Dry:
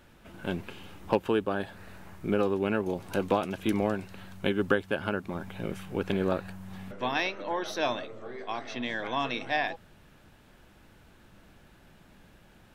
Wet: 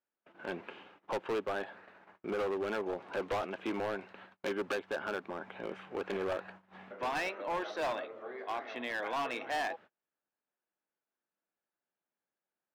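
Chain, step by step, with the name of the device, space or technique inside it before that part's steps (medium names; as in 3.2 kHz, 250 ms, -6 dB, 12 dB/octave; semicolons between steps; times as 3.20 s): walkie-talkie (band-pass 400–2300 Hz; hard clipper -30 dBFS, distortion -7 dB; gate -52 dBFS, range -33 dB)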